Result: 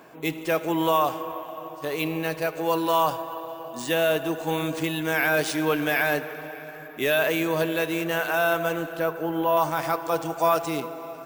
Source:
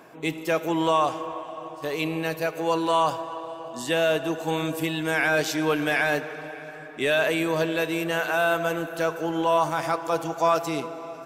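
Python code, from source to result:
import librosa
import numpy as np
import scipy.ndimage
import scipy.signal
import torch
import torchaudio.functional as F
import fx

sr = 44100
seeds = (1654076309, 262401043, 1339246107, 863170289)

y = fx.lowpass(x, sr, hz=2300.0, slope=6, at=(8.97, 9.57))
y = np.repeat(y[::3], 3)[:len(y)]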